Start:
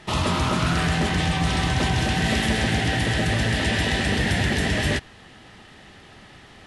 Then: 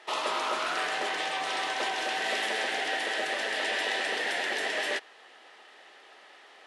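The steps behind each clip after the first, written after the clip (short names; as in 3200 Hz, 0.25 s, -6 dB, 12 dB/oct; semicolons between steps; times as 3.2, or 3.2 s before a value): HPF 430 Hz 24 dB/oct; high shelf 5500 Hz -6.5 dB; gain -3.5 dB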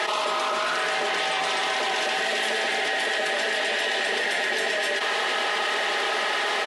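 comb 4.8 ms, depth 49%; fast leveller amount 100%; gain +1 dB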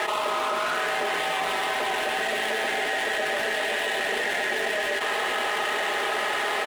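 median filter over 9 samples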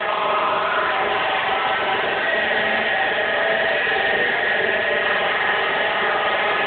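flutter echo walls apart 7.8 m, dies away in 1.1 s; gain +5 dB; AMR-NB 10.2 kbps 8000 Hz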